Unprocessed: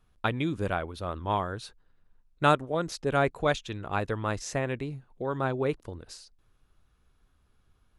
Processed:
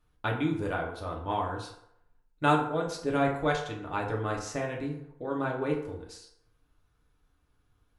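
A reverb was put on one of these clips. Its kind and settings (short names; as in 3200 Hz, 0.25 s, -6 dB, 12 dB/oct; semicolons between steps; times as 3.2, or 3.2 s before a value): FDN reverb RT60 0.76 s, low-frequency decay 0.75×, high-frequency decay 0.55×, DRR -1.5 dB; gain -5.5 dB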